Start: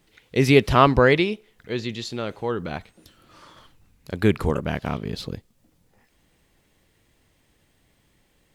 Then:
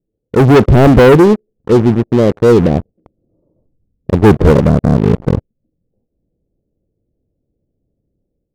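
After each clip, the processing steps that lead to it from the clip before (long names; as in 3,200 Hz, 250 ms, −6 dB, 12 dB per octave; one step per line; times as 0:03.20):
Butterworth low-pass 570 Hz 36 dB per octave
leveller curve on the samples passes 5
automatic gain control gain up to 7 dB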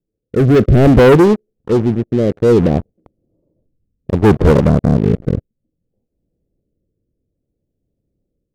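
rotating-speaker cabinet horn 0.6 Hz
level −1.5 dB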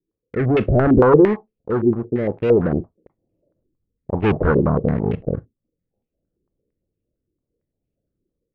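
in parallel at −10 dB: asymmetric clip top −10.5 dBFS
on the sum: convolution reverb RT60 0.15 s, pre-delay 35 ms, DRR 16.5 dB
low-pass on a step sequencer 8.8 Hz 360–2,600 Hz
level −10.5 dB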